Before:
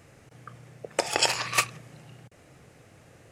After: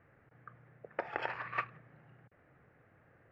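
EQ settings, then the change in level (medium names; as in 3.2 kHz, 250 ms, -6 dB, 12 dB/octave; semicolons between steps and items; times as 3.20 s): four-pole ladder low-pass 2 kHz, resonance 45%; -3.0 dB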